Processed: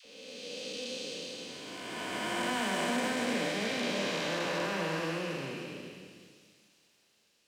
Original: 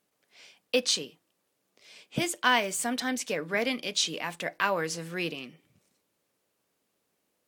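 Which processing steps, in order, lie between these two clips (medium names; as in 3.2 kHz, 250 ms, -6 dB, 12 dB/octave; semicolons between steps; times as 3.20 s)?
spectral blur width 1010 ms; treble shelf 6.6 kHz -7 dB; phase dispersion lows, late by 57 ms, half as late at 720 Hz; on a send: feedback echo behind a high-pass 1147 ms, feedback 37%, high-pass 5.1 kHz, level -14.5 dB; on the sum: Schroeder reverb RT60 1.2 s, combs from 29 ms, DRR 3 dB; trim +3.5 dB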